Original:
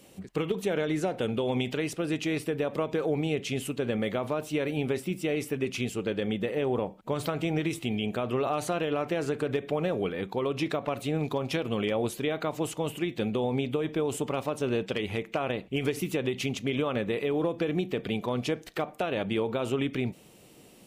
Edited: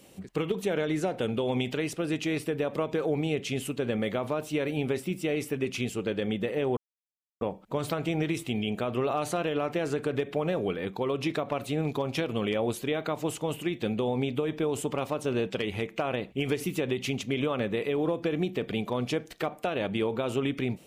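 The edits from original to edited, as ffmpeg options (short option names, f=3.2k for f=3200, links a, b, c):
-filter_complex "[0:a]asplit=2[a][b];[a]atrim=end=6.77,asetpts=PTS-STARTPTS,afade=t=out:st=6.766:d=0.004:c=hsin,apad=pad_dur=0.64[c];[b]atrim=start=6.77,asetpts=PTS-STARTPTS,afade=t=in:d=0.004:c=hsin[d];[c][d]concat=n=2:v=0:a=1"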